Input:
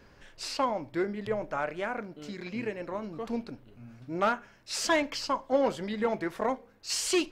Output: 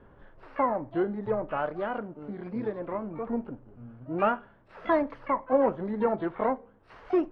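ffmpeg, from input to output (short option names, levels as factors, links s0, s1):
-filter_complex "[0:a]lowpass=f=1400:w=0.5412,lowpass=f=1400:w=1.3066,asplit=2[s0][s1];[s1]asetrate=88200,aresample=44100,atempo=0.5,volume=0.158[s2];[s0][s2]amix=inputs=2:normalize=0,volume=1.33"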